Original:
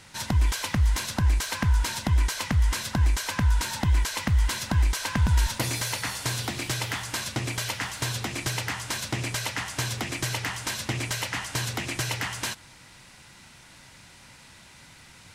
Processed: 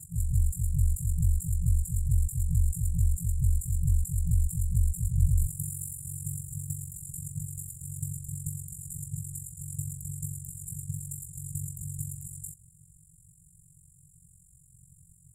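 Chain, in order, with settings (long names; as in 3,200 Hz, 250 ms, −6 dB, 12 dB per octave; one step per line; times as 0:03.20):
backwards echo 181 ms −4.5 dB
ring modulation 23 Hz
brick-wall band-stop 180–7,000 Hz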